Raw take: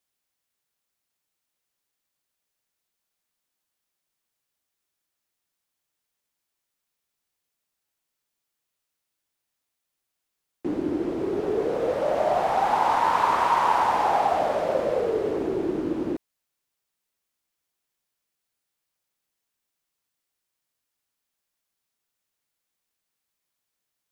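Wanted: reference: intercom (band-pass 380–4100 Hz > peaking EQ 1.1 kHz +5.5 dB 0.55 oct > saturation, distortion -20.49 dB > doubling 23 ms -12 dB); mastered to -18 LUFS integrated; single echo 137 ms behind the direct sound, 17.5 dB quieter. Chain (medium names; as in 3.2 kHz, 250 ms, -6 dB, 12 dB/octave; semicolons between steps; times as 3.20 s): band-pass 380–4100 Hz; peaking EQ 1.1 kHz +5.5 dB 0.55 oct; delay 137 ms -17.5 dB; saturation -10.5 dBFS; doubling 23 ms -12 dB; trim +5 dB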